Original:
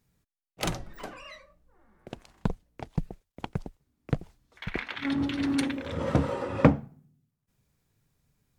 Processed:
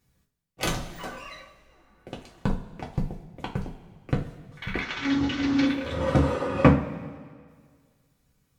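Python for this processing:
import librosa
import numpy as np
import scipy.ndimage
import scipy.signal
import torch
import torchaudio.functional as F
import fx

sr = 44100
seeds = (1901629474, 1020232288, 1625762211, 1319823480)

y = fx.cvsd(x, sr, bps=32000, at=(4.81, 5.67))
y = fx.rev_double_slope(y, sr, seeds[0], early_s=0.25, late_s=1.8, knee_db=-18, drr_db=-2.5)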